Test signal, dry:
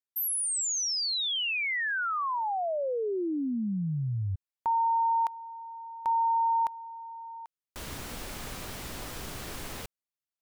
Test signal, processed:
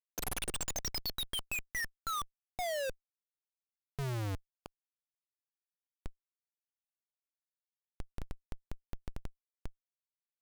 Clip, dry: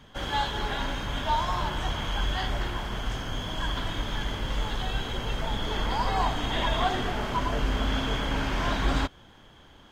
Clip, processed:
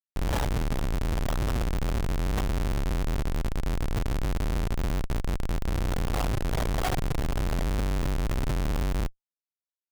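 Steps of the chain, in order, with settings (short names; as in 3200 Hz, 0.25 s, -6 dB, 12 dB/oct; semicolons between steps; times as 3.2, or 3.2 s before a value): low shelf 64 Hz +6 dB; comb 1.6 ms, depth 76%; Schmitt trigger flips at -23.5 dBFS; gain -4 dB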